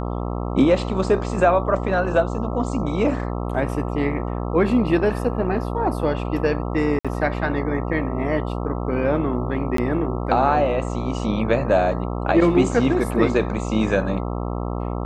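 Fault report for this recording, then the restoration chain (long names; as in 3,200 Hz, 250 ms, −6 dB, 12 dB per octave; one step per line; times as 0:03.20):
mains buzz 60 Hz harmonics 22 −26 dBFS
0:06.99–0:07.05: drop-out 56 ms
0:09.77–0:09.78: drop-out 13 ms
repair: hum removal 60 Hz, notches 22
repair the gap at 0:06.99, 56 ms
repair the gap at 0:09.77, 13 ms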